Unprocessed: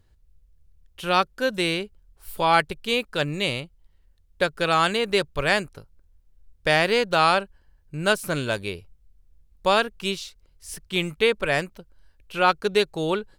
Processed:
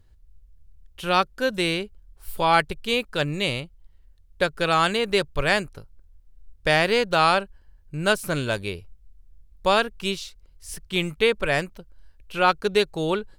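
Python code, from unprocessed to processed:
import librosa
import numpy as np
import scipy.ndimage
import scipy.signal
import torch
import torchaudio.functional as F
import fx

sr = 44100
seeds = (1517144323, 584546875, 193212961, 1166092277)

y = fx.low_shelf(x, sr, hz=74.0, db=7.0)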